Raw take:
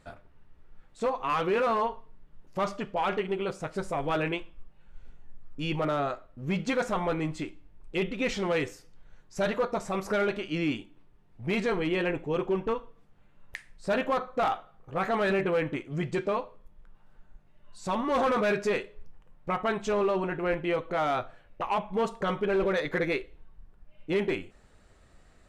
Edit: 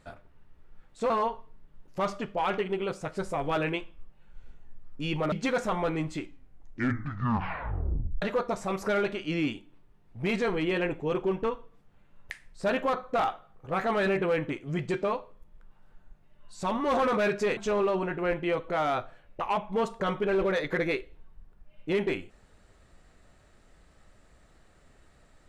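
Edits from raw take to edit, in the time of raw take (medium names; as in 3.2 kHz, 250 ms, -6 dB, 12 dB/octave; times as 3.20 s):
1.10–1.69 s: delete
5.91–6.56 s: delete
7.44 s: tape stop 2.02 s
18.81–19.78 s: delete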